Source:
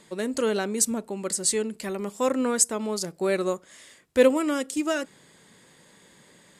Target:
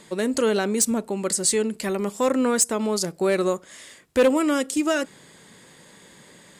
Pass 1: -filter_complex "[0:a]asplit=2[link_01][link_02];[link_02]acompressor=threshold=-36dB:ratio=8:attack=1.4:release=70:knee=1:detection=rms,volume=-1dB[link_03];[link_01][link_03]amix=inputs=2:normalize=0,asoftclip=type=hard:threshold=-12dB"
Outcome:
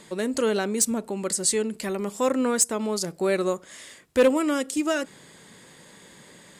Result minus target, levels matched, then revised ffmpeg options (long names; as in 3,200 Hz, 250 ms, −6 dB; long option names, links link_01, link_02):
downward compressor: peak gain reduction +10 dB
-filter_complex "[0:a]asplit=2[link_01][link_02];[link_02]acompressor=threshold=-24.5dB:ratio=8:attack=1.4:release=70:knee=1:detection=rms,volume=-1dB[link_03];[link_01][link_03]amix=inputs=2:normalize=0,asoftclip=type=hard:threshold=-12dB"